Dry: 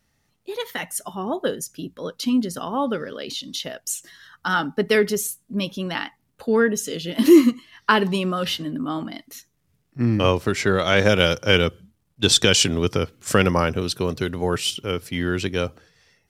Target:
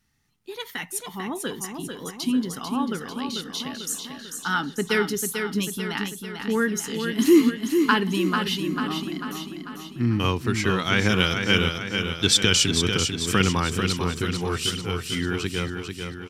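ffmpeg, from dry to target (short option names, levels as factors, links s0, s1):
-filter_complex "[0:a]equalizer=f=580:t=o:w=0.53:g=-15,asplit=2[s0][s1];[s1]aecho=0:1:444|888|1332|1776|2220|2664|3108:0.501|0.276|0.152|0.0834|0.0459|0.0252|0.0139[s2];[s0][s2]amix=inputs=2:normalize=0,volume=0.794"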